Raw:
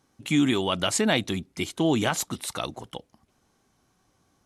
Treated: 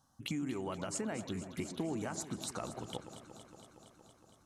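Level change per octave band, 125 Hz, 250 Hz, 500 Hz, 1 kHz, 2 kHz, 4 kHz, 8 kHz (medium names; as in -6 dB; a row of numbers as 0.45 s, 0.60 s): -11.5 dB, -13.5 dB, -13.0 dB, -13.5 dB, -17.0 dB, -18.0 dB, -11.5 dB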